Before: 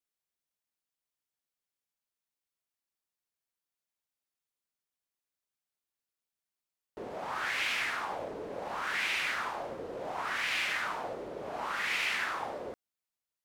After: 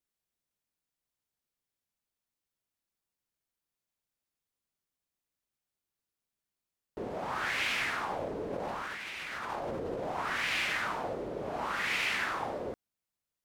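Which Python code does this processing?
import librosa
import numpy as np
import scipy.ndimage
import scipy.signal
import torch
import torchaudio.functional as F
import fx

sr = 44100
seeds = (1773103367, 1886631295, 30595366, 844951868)

y = fx.low_shelf(x, sr, hz=350.0, db=8.5)
y = fx.over_compress(y, sr, threshold_db=-38.0, ratio=-1.0, at=(8.5, 10.04))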